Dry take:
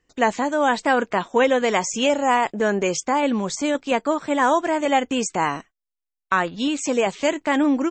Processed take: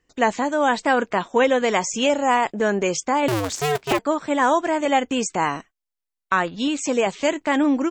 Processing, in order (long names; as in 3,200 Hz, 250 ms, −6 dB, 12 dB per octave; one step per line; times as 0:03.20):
0:03.28–0:03.99: sub-harmonics by changed cycles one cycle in 2, inverted